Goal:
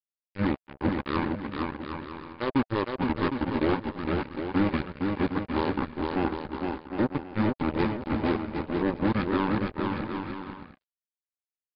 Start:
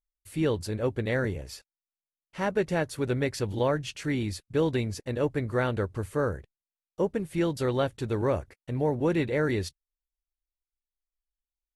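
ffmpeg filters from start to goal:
-filter_complex "[0:a]equalizer=f=65:t=o:w=0.98:g=-13,bandreject=f=50:t=h:w=6,bandreject=f=100:t=h:w=6,bandreject=f=150:t=h:w=6,bandreject=f=200:t=h:w=6,bandreject=f=250:t=h:w=6,bandreject=f=300:t=h:w=6,acompressor=mode=upward:threshold=-33dB:ratio=2.5,aresample=16000,acrusher=bits=3:mix=0:aa=0.5,aresample=44100,asetrate=27781,aresample=44100,atempo=1.5874,asuperstop=centerf=690:order=4:qfactor=7.2,asplit=2[a][b];[b]aecho=0:1:460|759|953.4|1080|1162:0.631|0.398|0.251|0.158|0.1[c];[a][c]amix=inputs=2:normalize=0"

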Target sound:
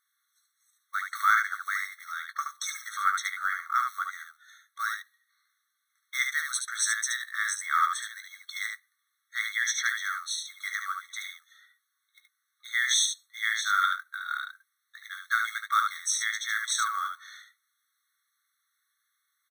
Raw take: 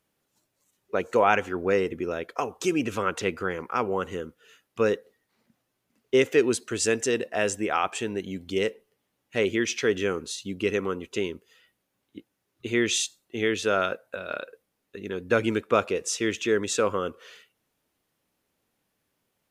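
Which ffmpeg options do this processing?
-filter_complex "[0:a]aeval=exprs='0.531*(cos(1*acos(clip(val(0)/0.531,-1,1)))-cos(1*PI/2))+0.0188*(cos(2*acos(clip(val(0)/0.531,-1,1)))-cos(2*PI/2))+0.015*(cos(4*acos(clip(val(0)/0.531,-1,1)))-cos(4*PI/2))':c=same,acrusher=bits=6:mode=log:mix=0:aa=0.000001,asplit=2[a][b];[b]aecho=0:1:18|73:0.335|0.562[c];[a][c]amix=inputs=2:normalize=0,afftfilt=real='re*eq(mod(floor(b*sr/1024/1100),2),1)':imag='im*eq(mod(floor(b*sr/1024/1100),2),1)':win_size=1024:overlap=0.75,volume=3dB"

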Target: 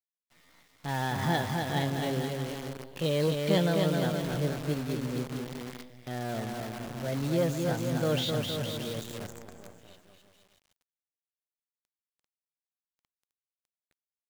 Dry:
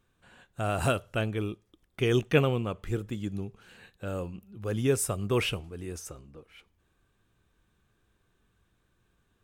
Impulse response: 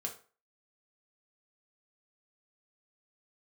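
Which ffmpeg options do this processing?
-af "asetrate=55563,aresample=44100,atempo=0.793701,aresample=16000,asoftclip=type=tanh:threshold=-19.5dB,aresample=44100,highpass=f=70:p=1,atempo=0.66,adynamicequalizer=threshold=0.00562:dfrequency=200:dqfactor=1.1:tfrequency=200:tqfactor=1.1:attack=5:release=100:ratio=0.375:range=2:mode=boostabove:tftype=bell,aecho=1:1:260|468|634.4|767.5|874:0.631|0.398|0.251|0.158|0.1,acrusher=bits=7:dc=4:mix=0:aa=0.000001,volume=-2dB"

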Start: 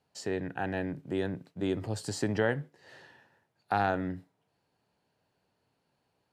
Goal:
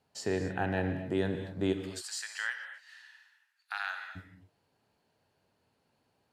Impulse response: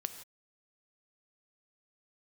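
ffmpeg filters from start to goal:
-filter_complex "[0:a]asplit=3[a][b][c];[a]afade=t=out:st=1.72:d=0.02[d];[b]highpass=f=1.4k:w=0.5412,highpass=f=1.4k:w=1.3066,afade=t=in:st=1.72:d=0.02,afade=t=out:st=4.15:d=0.02[e];[c]afade=t=in:st=4.15:d=0.02[f];[d][e][f]amix=inputs=3:normalize=0[g];[1:a]atrim=start_sample=2205,asetrate=28224,aresample=44100[h];[g][h]afir=irnorm=-1:irlink=0"

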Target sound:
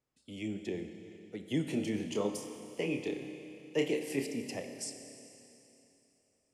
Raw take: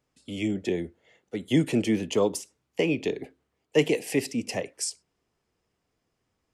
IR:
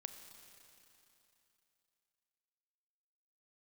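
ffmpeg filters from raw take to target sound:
-filter_complex "[0:a]asettb=1/sr,asplit=3[a][b][c];[a]atrim=end=1.644[d];[b]atrim=start=1.64:end=4.25,asetpts=PTS-STARTPTS,afade=t=in:d=0.004:c=qsin,afade=t=out:st=2.606:d=0.004:c=qsin,asplit=2[e][f];[f]adelay=29,volume=-7dB[g];[e][g]amix=inputs=2:normalize=0,atrim=end_sample=115101[h];[c]atrim=start=4.246[i];[d][h]acrossfade=d=0.004:c1=hsin:c2=qsin[j];[j][i]acrossfade=d=0.004:c1=qsin:c2=hsin[k];[1:a]atrim=start_sample=2205[l];[k][l]afir=irnorm=-1:irlink=0,volume=-5.5dB"

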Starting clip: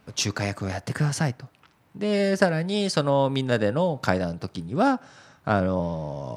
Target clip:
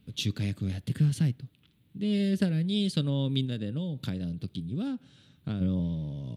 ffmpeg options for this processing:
-filter_complex "[0:a]firequalizer=gain_entry='entry(200,0);entry(690,-23);entry(1000,-23);entry(3500,1);entry(5300,-16);entry(11000,-4)':delay=0.05:min_phase=1,asplit=3[a][b][c];[a]afade=t=out:st=3.45:d=0.02[d];[b]acompressor=threshold=-29dB:ratio=6,afade=t=in:st=3.45:d=0.02,afade=t=out:st=5.6:d=0.02[e];[c]afade=t=in:st=5.6:d=0.02[f];[d][e][f]amix=inputs=3:normalize=0"

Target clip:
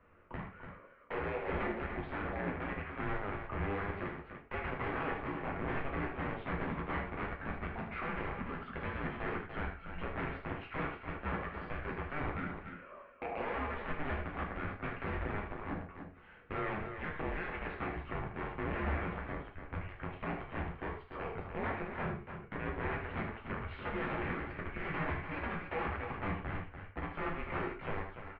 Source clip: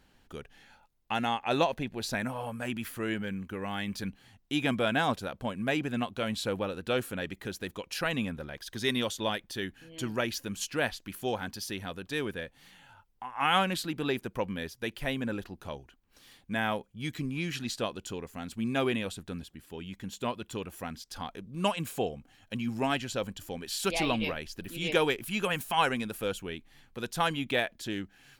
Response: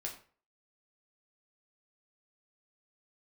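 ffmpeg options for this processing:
-filter_complex "[0:a]aemphasis=mode=reproduction:type=75kf,acompressor=threshold=-40dB:ratio=3,aeval=exprs='(mod(56.2*val(0)+1,2)-1)/56.2':c=same,aecho=1:1:75.8|291.5:0.355|0.398,asettb=1/sr,asplit=3[a][b][c];[a]atrim=end=3.994[d];[b]atrim=start=3.99:end=5.45,asetpts=PTS-STARTPTS,afade=t=in:d=0.004:c=qsin,afade=t=out:st=1.456:d=0.004:c=qsin,afreqshift=-40[e];[c]atrim=start=5.446[f];[d][e]acrossfade=d=0.004:c1=hsin:c2=qsin[g];[g][f]acrossfade=d=0.004:c1=qsin:c2=hsin[h];[1:a]atrim=start_sample=2205,afade=t=out:st=0.18:d=0.01,atrim=end_sample=8379[i];[h][i]afir=irnorm=-1:irlink=0,highpass=f=290:t=q:w=0.5412,highpass=f=290:t=q:w=1.307,lowpass=f=2.6k:t=q:w=0.5176,lowpass=f=2.6k:t=q:w=0.7071,lowpass=f=2.6k:t=q:w=1.932,afreqshift=-310,volume=7.5dB"

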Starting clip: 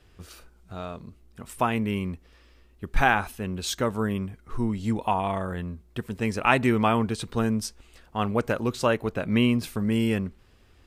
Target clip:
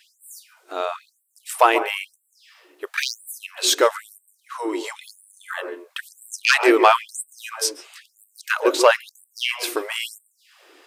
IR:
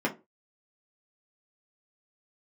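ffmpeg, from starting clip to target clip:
-filter_complex "[0:a]aeval=exprs='0.668*sin(PI/2*2.51*val(0)/0.668)':c=same,asplit=2[a][b];[1:a]atrim=start_sample=2205,adelay=133[c];[b][c]afir=irnorm=-1:irlink=0,volume=-21dB[d];[a][d]amix=inputs=2:normalize=0,afftfilt=real='re*gte(b*sr/1024,260*pow(7700/260,0.5+0.5*sin(2*PI*1*pts/sr)))':imag='im*gte(b*sr/1024,260*pow(7700/260,0.5+0.5*sin(2*PI*1*pts/sr)))':win_size=1024:overlap=0.75"

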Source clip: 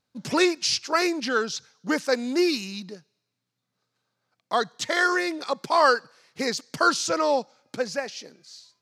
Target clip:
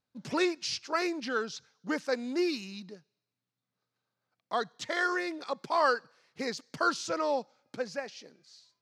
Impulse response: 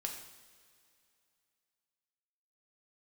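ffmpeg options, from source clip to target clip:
-af "highshelf=f=7.1k:g=-10,volume=-7dB"

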